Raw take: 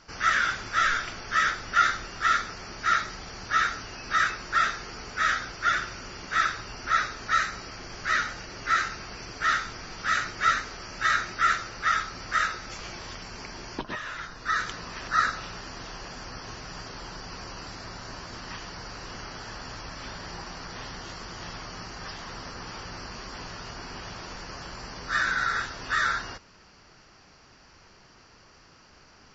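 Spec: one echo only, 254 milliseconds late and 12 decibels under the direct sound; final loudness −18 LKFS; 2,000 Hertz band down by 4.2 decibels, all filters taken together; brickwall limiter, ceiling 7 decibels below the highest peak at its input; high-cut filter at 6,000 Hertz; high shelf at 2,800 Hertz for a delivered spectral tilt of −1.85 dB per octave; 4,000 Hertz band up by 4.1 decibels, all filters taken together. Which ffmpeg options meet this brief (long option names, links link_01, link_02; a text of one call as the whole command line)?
ffmpeg -i in.wav -af "lowpass=6000,equalizer=frequency=2000:width_type=o:gain=-7.5,highshelf=frequency=2800:gain=3,equalizer=frequency=4000:width_type=o:gain=5.5,alimiter=limit=-19dB:level=0:latency=1,aecho=1:1:254:0.251,volume=14.5dB" out.wav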